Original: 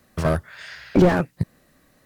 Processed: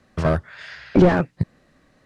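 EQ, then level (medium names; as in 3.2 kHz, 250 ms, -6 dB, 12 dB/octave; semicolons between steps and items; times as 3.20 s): distance through air 84 m; +1.5 dB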